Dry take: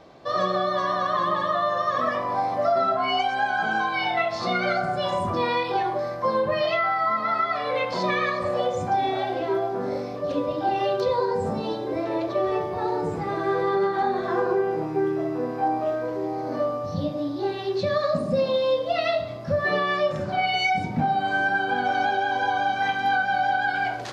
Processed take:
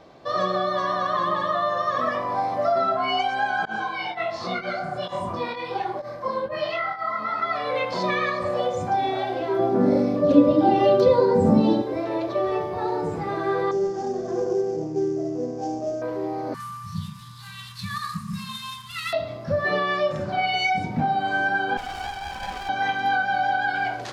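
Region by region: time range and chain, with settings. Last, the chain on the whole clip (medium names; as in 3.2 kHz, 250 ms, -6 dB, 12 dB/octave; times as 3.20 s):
3.65–7.42 s: volume shaper 128 bpm, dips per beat 1, -23 dB, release 111 ms + detune thickener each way 46 cents
9.59–11.82 s: peaking EQ 190 Hz +14 dB 2.5 oct + comb 3.5 ms, depth 39%
13.71–16.02 s: CVSD coder 32 kbps + high-order bell 1.9 kHz -15.5 dB 2.6 oct + band-stop 4 kHz, Q 11
16.54–19.13 s: CVSD coder 64 kbps + Chebyshev band-stop 210–980 Hz, order 5
21.77–22.69 s: high-pass 1.2 kHz + comb 0.9 ms, depth 81% + sliding maximum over 17 samples
whole clip: none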